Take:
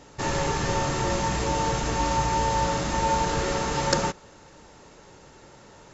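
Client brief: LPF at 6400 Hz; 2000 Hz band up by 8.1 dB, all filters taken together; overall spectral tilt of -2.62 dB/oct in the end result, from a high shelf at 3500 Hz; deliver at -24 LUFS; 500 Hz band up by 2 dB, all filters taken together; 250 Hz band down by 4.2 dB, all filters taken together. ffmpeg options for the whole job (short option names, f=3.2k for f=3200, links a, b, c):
-af "lowpass=6.4k,equalizer=f=250:t=o:g=-8,equalizer=f=500:t=o:g=3.5,equalizer=f=2k:t=o:g=7.5,highshelf=f=3.5k:g=8.5,volume=-1.5dB"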